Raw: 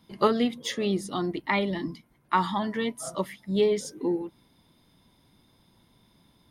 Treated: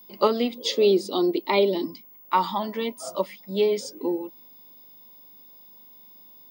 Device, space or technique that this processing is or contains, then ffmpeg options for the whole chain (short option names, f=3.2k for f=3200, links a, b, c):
old television with a line whistle: -filter_complex "[0:a]highpass=f=210:w=0.5412,highpass=f=210:w=1.3066,equalizer=f=550:t=q:w=4:g=7,equalizer=f=940:t=q:w=4:g=4,equalizer=f=1.7k:t=q:w=4:g=-10,equalizer=f=2.5k:t=q:w=4:g=5,equalizer=f=4.8k:t=q:w=4:g=7,lowpass=f=8.9k:w=0.5412,lowpass=f=8.9k:w=1.3066,aeval=exprs='val(0)+0.00447*sin(2*PI*15625*n/s)':c=same,asettb=1/sr,asplit=3[a][b][c];[a]atrim=end=0.554[d];[b]atrim=start=0.55:end=1.85,asetpts=PTS-STARTPTS,afade=t=in:d=0.004:c=qsin,afade=t=out:st=1.296:d=0.004:c=qsin,equalizer=f=400:t=o:w=0.67:g=11,equalizer=f=1.6k:t=o:w=0.67:g=-6,equalizer=f=4k:t=o:w=0.67:g=7[e];[c]atrim=start=1.846[f];[d][e]acrossfade=d=0.004:c1=hsin:c2=qsin[g];[g][f]acrossfade=d=0.004:c1=qsin:c2=hsin"